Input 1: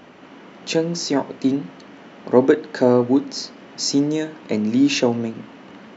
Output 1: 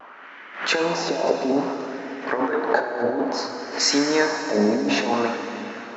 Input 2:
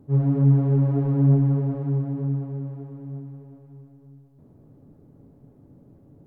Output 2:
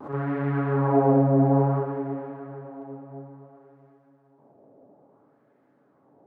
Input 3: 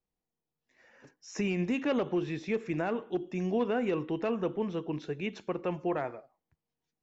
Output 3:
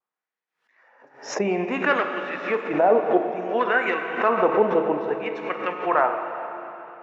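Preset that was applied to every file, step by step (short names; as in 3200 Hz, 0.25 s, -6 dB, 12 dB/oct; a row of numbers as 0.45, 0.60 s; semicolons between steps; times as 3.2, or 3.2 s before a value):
LFO band-pass sine 0.58 Hz 630–1800 Hz; gate -47 dBFS, range -9 dB; dynamic EQ 2900 Hz, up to -4 dB, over -57 dBFS, Q 2.3; negative-ratio compressor -36 dBFS, ratio -1; Bessel high-pass 170 Hz; vibrato 0.6 Hz 26 cents; plate-style reverb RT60 3.6 s, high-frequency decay 0.95×, DRR 4.5 dB; backwards sustainer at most 120 dB/s; match loudness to -23 LUFS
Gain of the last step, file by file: +13.0, +17.5, +21.0 dB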